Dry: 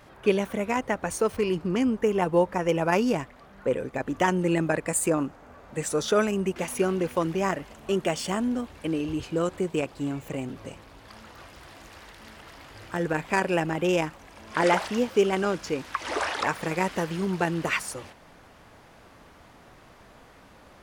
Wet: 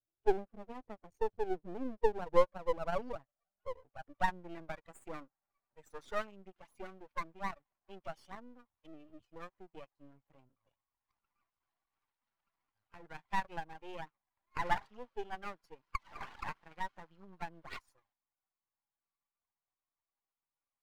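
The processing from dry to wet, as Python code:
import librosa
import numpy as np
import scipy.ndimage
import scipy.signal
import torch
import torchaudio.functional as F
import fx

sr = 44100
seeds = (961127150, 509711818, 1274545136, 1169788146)

y = fx.bin_expand(x, sr, power=2.0)
y = fx.filter_sweep_bandpass(y, sr, from_hz=370.0, to_hz=970.0, start_s=1.22, end_s=4.68, q=3.5)
y = np.maximum(y, 0.0)
y = F.gain(torch.from_numpy(y), 3.0).numpy()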